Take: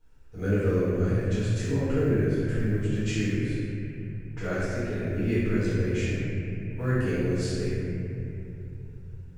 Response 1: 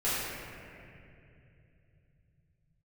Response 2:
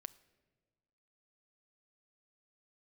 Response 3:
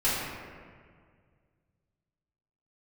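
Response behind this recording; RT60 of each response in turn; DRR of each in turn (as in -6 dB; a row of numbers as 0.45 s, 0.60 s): 1; 2.7 s, 1.5 s, 1.9 s; -12.5 dB, 14.0 dB, -11.5 dB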